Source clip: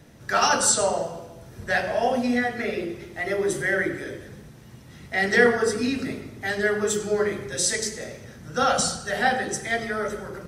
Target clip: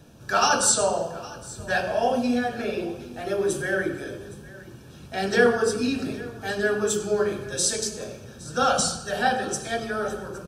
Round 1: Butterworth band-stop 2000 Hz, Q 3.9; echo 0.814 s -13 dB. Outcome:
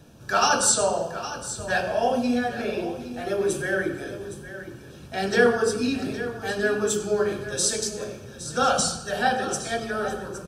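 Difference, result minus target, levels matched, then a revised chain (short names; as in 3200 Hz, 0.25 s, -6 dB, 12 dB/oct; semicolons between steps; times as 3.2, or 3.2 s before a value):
echo-to-direct +7 dB
Butterworth band-stop 2000 Hz, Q 3.9; echo 0.814 s -20 dB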